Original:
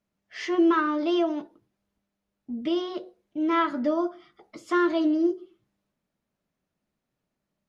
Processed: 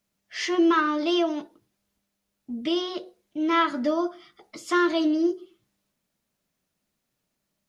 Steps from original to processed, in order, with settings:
high-shelf EQ 2,700 Hz +11.5 dB

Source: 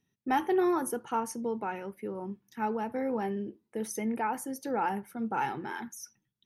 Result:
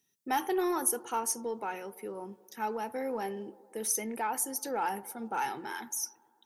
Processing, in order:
bass and treble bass −11 dB, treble +13 dB
delay with a band-pass on its return 115 ms, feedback 70%, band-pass 530 Hz, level −20.5 dB
in parallel at −6.5 dB: soft clipping −27 dBFS, distortion −12 dB
on the sum: level −4 dB

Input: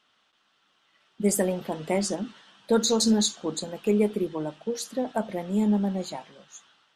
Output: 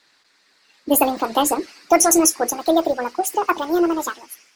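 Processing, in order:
gliding playback speed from 133% → 172%
harmonic and percussive parts rebalanced percussive +5 dB
level +5.5 dB

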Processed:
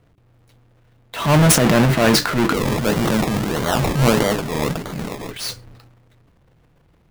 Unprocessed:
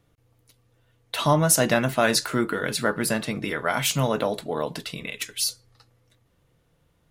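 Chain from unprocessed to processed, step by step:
each half-wave held at its own peak
bass and treble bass +2 dB, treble −7 dB
hum removal 97.57 Hz, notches 4
transient designer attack −7 dB, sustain +9 dB
0:02.54–0:05.31: sample-and-hold swept by an LFO 24×, swing 60% 1.6 Hz
level +2 dB

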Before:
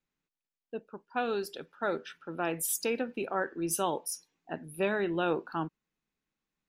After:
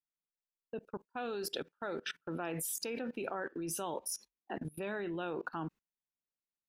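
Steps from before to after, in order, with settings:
noise gate −49 dBFS, range −20 dB
output level in coarse steps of 23 dB
0:03.94–0:04.58: frequency shifter +42 Hz
level +8 dB

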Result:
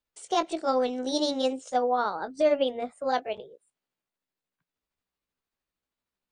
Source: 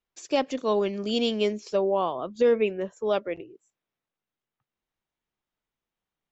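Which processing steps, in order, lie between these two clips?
pitch shift by two crossfaded delay taps +4 semitones

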